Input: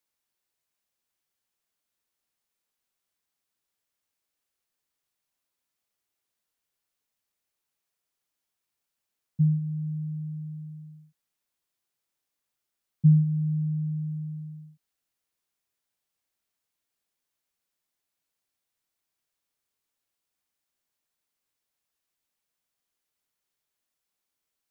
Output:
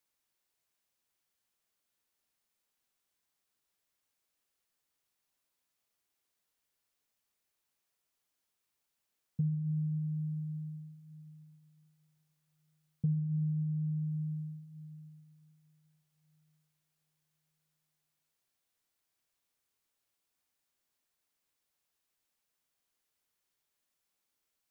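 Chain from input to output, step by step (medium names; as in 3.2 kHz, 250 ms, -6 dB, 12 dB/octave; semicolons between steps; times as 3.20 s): compression, threshold -31 dBFS, peak gain reduction 15.5 dB; on a send: reverberation RT60 4.2 s, pre-delay 16 ms, DRR 11 dB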